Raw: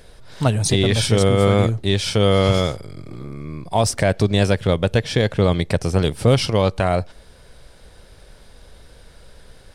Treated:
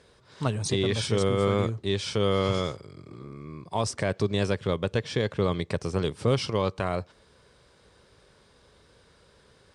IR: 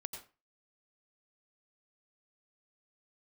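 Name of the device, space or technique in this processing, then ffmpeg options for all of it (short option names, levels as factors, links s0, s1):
car door speaker: -af "highpass=87,equalizer=f=400:t=q:w=4:g=4,equalizer=f=700:t=q:w=4:g=-4,equalizer=f=1100:t=q:w=4:g=6,lowpass=f=8800:w=0.5412,lowpass=f=8800:w=1.3066,volume=0.355"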